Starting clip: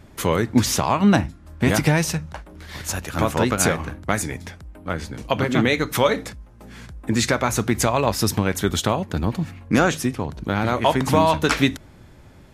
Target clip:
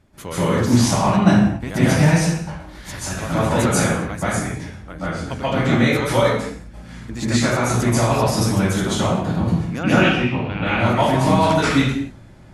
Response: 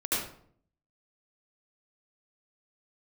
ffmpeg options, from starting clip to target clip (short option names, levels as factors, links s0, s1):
-filter_complex "[0:a]asettb=1/sr,asplit=3[s0][s1][s2];[s0]atrim=end=9.834[s3];[s1]atrim=start=9.83:end=10.65,asetpts=PTS-STARTPTS,afade=t=in:d=0.004:c=qsin,afade=t=out:st=0.816:d=0.004:c=qsin,lowpass=f=2700:t=q:w=8.2[s4];[s2]atrim=start=10.646[s5];[s3][s4]acrossfade=d=0.004:c1=hsin:c2=qsin[s6];[s6][s5]acrossfade=d=0.004:c1=qsin:c2=hsin[s7];[1:a]atrim=start_sample=2205,afade=t=out:st=0.28:d=0.01,atrim=end_sample=12789,asetrate=23814,aresample=44100[s8];[s7][s8]afir=irnorm=-1:irlink=0,volume=0.266"